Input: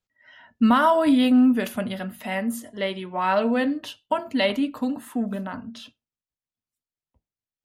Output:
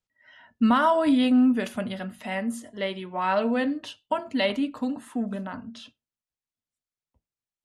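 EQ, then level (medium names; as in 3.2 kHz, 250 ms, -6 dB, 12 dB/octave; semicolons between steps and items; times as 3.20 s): low-pass 10 kHz 24 dB/octave; -2.5 dB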